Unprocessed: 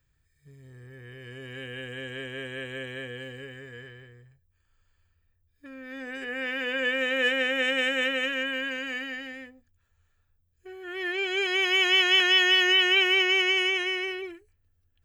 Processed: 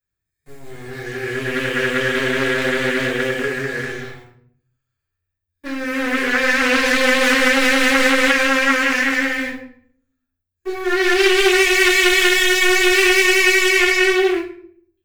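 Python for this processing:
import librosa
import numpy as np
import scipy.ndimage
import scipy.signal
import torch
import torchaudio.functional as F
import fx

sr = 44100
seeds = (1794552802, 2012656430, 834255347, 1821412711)

y = fx.highpass(x, sr, hz=140.0, slope=6)
y = fx.high_shelf(y, sr, hz=11000.0, db=8.5)
y = fx.notch(y, sr, hz=3000.0, q=11.0)
y = fx.leveller(y, sr, passes=5)
y = fx.room_shoebox(y, sr, seeds[0], volume_m3=83.0, walls='mixed', distance_m=2.2)
y = fx.doppler_dist(y, sr, depth_ms=0.22)
y = F.gain(torch.from_numpy(y), -7.5).numpy()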